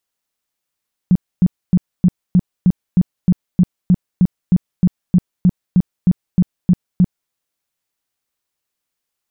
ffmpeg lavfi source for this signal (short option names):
-f lavfi -i "aevalsrc='0.447*sin(2*PI*180*mod(t,0.31))*lt(mod(t,0.31),8/180)':d=6.2:s=44100"